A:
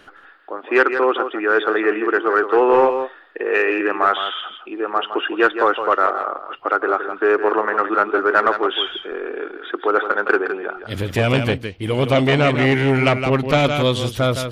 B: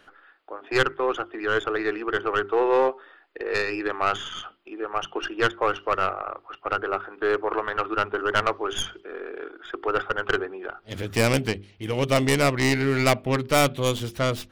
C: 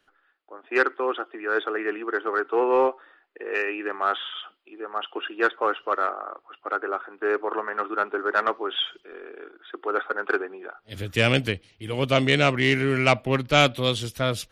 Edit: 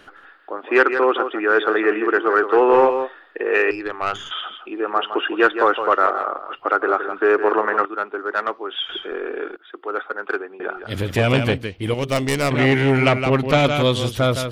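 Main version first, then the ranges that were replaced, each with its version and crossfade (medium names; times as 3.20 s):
A
3.71–4.31 s: from B
7.85–8.89 s: from C
9.56–10.60 s: from C
11.94–12.51 s: from B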